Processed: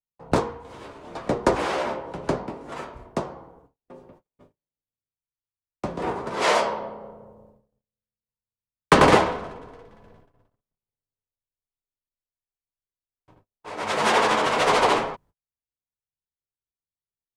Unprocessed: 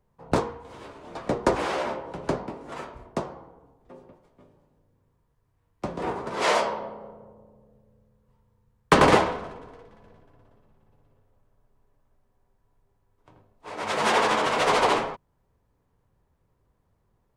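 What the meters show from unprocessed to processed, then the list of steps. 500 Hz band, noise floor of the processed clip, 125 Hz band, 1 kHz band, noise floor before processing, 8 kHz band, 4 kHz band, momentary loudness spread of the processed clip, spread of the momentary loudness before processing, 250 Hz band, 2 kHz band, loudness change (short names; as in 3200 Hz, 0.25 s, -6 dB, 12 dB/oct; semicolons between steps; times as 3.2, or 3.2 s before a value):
+2.0 dB, under -85 dBFS, +2.0 dB, +2.0 dB, -71 dBFS, +2.0 dB, +2.0 dB, 20 LU, 20 LU, +2.0 dB, +2.0 dB, +2.0 dB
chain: gate -54 dBFS, range -38 dB; gain +2 dB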